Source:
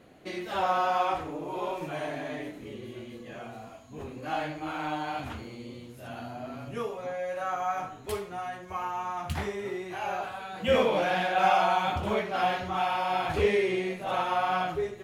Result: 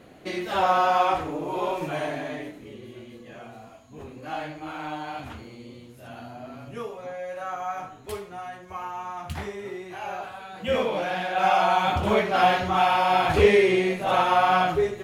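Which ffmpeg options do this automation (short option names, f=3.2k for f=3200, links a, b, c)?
-af "volume=14dB,afade=t=out:st=1.95:d=0.69:silence=0.473151,afade=t=in:st=11.24:d=1.04:silence=0.375837"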